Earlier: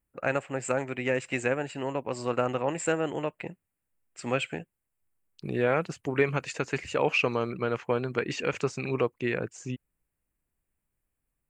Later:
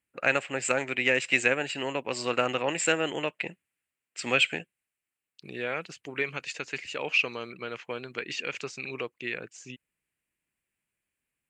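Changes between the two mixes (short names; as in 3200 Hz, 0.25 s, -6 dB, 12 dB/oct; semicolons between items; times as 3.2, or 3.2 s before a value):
second voice -8.5 dB; master: add weighting filter D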